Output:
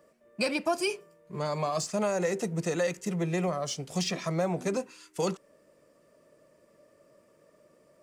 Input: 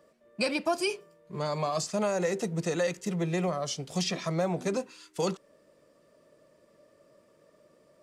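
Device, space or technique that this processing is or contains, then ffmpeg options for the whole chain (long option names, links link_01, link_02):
exciter from parts: -filter_complex "[0:a]asplit=2[link_01][link_02];[link_02]highpass=2100,asoftclip=type=tanh:threshold=-37dB,highpass=frequency=2800:width=0.5412,highpass=frequency=2800:width=1.3066,volume=-8dB[link_03];[link_01][link_03]amix=inputs=2:normalize=0"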